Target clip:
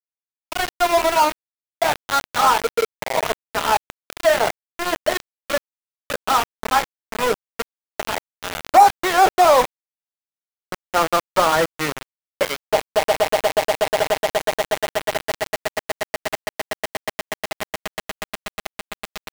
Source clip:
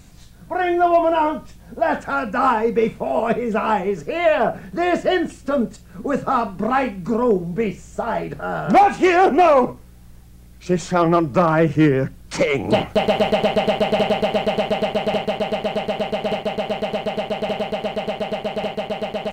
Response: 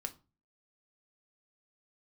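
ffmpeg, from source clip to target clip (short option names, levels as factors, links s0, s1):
-filter_complex "[0:a]acrossover=split=490 2200:gain=0.112 1 0.0708[s0][s1][s2];[s0][s1][s2]amix=inputs=3:normalize=0,asplit=2[s3][s4];[1:a]atrim=start_sample=2205[s5];[s4][s5]afir=irnorm=-1:irlink=0,volume=0.631[s6];[s3][s6]amix=inputs=2:normalize=0,aeval=exprs='val(0)*gte(abs(val(0)),0.15)':c=same"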